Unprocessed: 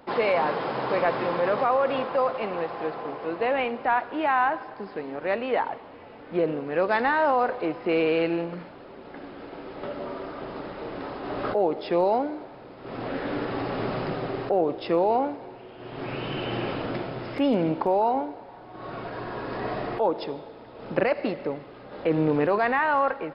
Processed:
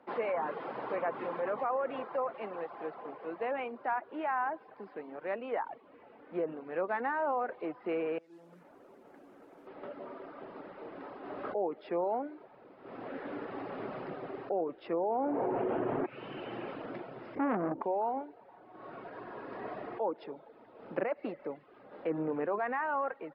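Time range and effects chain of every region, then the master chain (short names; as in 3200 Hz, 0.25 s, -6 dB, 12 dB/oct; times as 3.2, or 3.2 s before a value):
8.18–9.67 air absorption 420 m + compressor 4:1, threshold -41 dBFS + modulation noise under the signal 12 dB
14.93–16.06 LPF 1200 Hz 6 dB/oct + fast leveller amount 100%
17.35–17.82 tilt shelf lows +9 dB, about 920 Hz + core saturation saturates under 1000 Hz
whole clip: treble ducked by the level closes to 2300 Hz, closed at -18.5 dBFS; reverb removal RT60 0.51 s; three-band isolator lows -14 dB, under 170 Hz, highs -15 dB, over 2800 Hz; gain -9 dB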